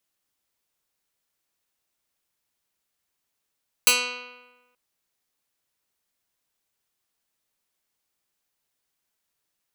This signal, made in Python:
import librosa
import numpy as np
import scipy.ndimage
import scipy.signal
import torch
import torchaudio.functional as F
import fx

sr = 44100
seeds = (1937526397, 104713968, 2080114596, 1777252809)

y = fx.pluck(sr, length_s=0.88, note=59, decay_s=1.22, pick=0.14, brightness='medium')